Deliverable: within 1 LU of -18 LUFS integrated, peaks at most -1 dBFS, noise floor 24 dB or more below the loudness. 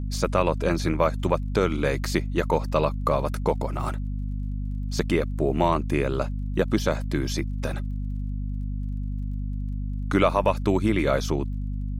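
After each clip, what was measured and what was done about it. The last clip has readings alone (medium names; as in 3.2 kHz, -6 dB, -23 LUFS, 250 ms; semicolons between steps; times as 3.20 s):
tick rate 29 per s; hum 50 Hz; highest harmonic 250 Hz; hum level -26 dBFS; loudness -26.0 LUFS; peak level -7.0 dBFS; loudness target -18.0 LUFS
-> de-click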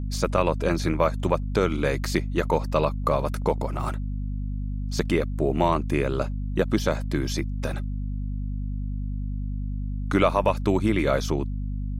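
tick rate 0.083 per s; hum 50 Hz; highest harmonic 250 Hz; hum level -26 dBFS
-> de-hum 50 Hz, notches 5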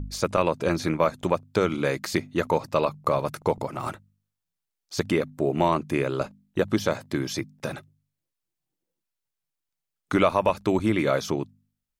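hum not found; loudness -26.0 LUFS; peak level -8.0 dBFS; loudness target -18.0 LUFS
-> trim +8 dB; peak limiter -1 dBFS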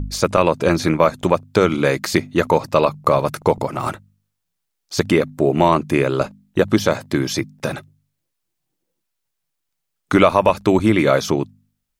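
loudness -18.5 LUFS; peak level -1.0 dBFS; noise floor -77 dBFS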